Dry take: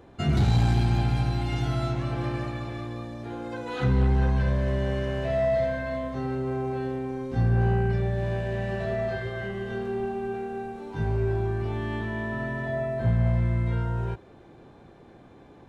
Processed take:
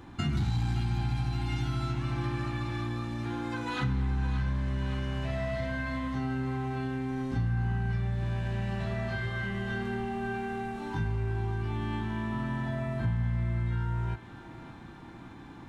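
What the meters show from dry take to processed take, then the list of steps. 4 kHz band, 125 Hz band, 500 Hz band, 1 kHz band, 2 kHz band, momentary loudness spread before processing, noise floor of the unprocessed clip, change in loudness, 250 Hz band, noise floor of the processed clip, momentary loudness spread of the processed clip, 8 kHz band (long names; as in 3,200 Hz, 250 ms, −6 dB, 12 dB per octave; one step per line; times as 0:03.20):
−2.0 dB, −4.5 dB, −10.5 dB, −3.5 dB, −1.5 dB, 11 LU, −51 dBFS, −5.0 dB, −3.0 dB, −47 dBFS, 5 LU, can't be measured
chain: flat-topped bell 520 Hz −12 dB 1 octave
hum removal 76.59 Hz, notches 39
downward compressor 3 to 1, threshold −36 dBFS, peak gain reduction 13.5 dB
feedback echo with a high-pass in the loop 569 ms, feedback 70%, level −12 dB
level +5.5 dB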